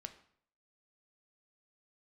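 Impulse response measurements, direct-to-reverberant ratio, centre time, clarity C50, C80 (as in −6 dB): 7.5 dB, 8 ms, 13.0 dB, 16.0 dB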